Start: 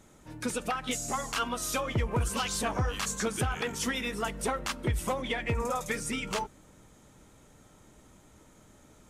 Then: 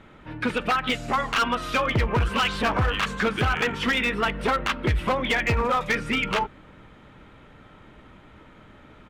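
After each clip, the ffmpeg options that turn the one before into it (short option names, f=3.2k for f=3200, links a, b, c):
-af "firequalizer=gain_entry='entry(750,0);entry(1300,5);entry(2900,4);entry(6400,-22)':delay=0.05:min_phase=1,asoftclip=type=hard:threshold=-25.5dB,volume=7.5dB"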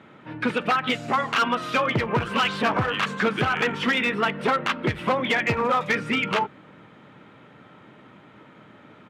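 -af "highpass=f=120:w=0.5412,highpass=f=120:w=1.3066,highshelf=f=6k:g=-7.5,volume=1.5dB"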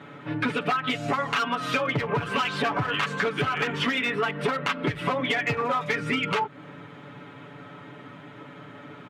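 -af "aecho=1:1:7:0.85,acompressor=threshold=-26dB:ratio=6,volume=3dB"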